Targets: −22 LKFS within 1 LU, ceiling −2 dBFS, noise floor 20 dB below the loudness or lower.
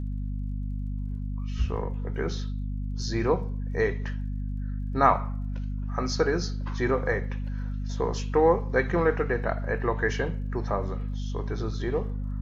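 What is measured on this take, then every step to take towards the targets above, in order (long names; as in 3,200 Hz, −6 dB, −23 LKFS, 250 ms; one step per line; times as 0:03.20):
crackle rate 31 per second; mains hum 50 Hz; hum harmonics up to 250 Hz; level of the hum −28 dBFS; integrated loudness −28.5 LKFS; sample peak −6.0 dBFS; target loudness −22.0 LKFS
→ click removal
hum removal 50 Hz, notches 5
level +6.5 dB
brickwall limiter −2 dBFS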